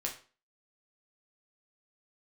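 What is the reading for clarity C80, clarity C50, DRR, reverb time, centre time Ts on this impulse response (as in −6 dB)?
14.5 dB, 10.0 dB, −1.0 dB, 0.40 s, 18 ms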